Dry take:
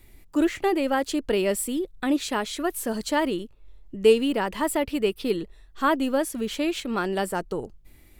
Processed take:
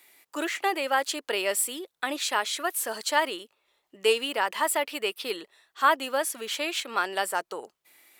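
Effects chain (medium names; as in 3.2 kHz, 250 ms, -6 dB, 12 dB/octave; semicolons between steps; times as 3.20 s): high-pass 780 Hz 12 dB/octave; trim +3.5 dB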